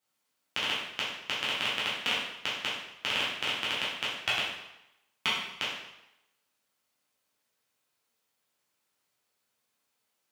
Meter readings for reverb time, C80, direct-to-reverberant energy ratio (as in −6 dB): 0.85 s, 4.5 dB, −8.5 dB